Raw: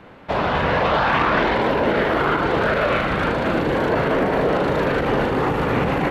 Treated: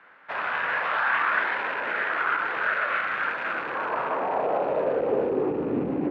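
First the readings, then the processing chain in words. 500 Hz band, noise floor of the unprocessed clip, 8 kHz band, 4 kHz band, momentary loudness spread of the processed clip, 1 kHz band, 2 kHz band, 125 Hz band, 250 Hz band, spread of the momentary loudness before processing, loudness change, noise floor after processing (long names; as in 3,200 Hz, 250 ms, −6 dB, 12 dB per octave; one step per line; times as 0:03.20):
−8.0 dB, −27 dBFS, can't be measured, −11.5 dB, 5 LU, −6.0 dB, −2.0 dB, −18.0 dB, −10.0 dB, 3 LU, −6.0 dB, −37 dBFS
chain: loose part that buzzes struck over −26 dBFS, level −18 dBFS
band-pass filter sweep 1,600 Hz → 300 Hz, 0:03.43–0:05.80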